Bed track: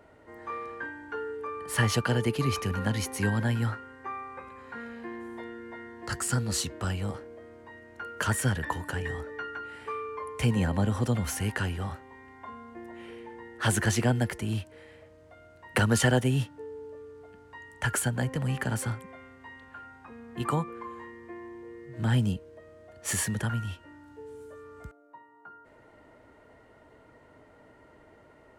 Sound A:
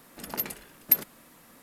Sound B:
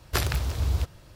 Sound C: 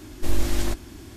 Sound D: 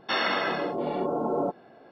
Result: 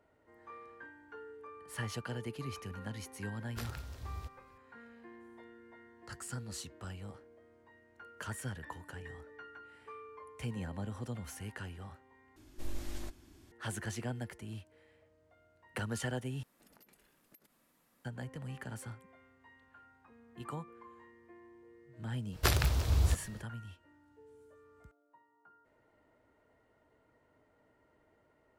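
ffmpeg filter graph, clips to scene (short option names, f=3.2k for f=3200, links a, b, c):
-filter_complex "[2:a]asplit=2[a][b];[0:a]volume=-14dB[c];[1:a]acompressor=threshold=-43dB:ratio=8:attack=4.9:release=109:knee=6:detection=peak[d];[c]asplit=3[e][f][g];[e]atrim=end=12.364[h];[3:a]atrim=end=1.16,asetpts=PTS-STARTPTS,volume=-17.5dB[i];[f]atrim=start=13.516:end=16.434[j];[d]atrim=end=1.62,asetpts=PTS-STARTPTS,volume=-17.5dB[k];[g]atrim=start=18.046[l];[a]atrim=end=1.15,asetpts=PTS-STARTPTS,volume=-18dB,afade=t=in:d=0.004:c=hsin,afade=t=out:st=1.146:d=0.004:c=hsin,adelay=3430[m];[b]atrim=end=1.15,asetpts=PTS-STARTPTS,volume=-2.5dB,afade=t=in:d=0.05,afade=t=out:st=1.1:d=0.05,adelay=22300[n];[h][i]acrossfade=d=0.004:c1=hsin:c2=hsin[o];[o][j]acrossfade=d=0.004:c1=hsin:c2=hsin[p];[p][k]acrossfade=d=0.004:c1=hsin:c2=hsin[q];[q][l]acrossfade=d=0.004:c1=hsin:c2=hsin[r];[r][m][n]amix=inputs=3:normalize=0"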